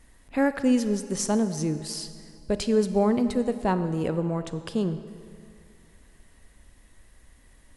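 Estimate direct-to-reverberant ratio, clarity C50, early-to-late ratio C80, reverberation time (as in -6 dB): 11.0 dB, 11.5 dB, 12.5 dB, 2.5 s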